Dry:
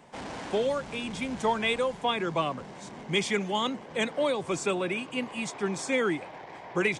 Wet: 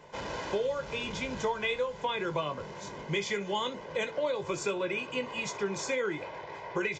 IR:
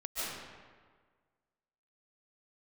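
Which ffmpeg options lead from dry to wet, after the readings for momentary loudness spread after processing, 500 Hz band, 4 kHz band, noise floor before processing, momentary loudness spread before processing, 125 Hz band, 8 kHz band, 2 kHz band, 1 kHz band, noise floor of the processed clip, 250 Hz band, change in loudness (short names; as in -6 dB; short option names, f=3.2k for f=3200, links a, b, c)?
7 LU, -2.5 dB, -4.0 dB, -45 dBFS, 10 LU, -3.5 dB, -2.5 dB, -3.0 dB, -4.0 dB, -45 dBFS, -6.5 dB, -3.5 dB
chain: -filter_complex "[0:a]aecho=1:1:2:0.57,acompressor=threshold=-29dB:ratio=5,asplit=2[a][b];[b]aecho=0:1:20|65:0.376|0.126[c];[a][c]amix=inputs=2:normalize=0,aresample=16000,aresample=44100"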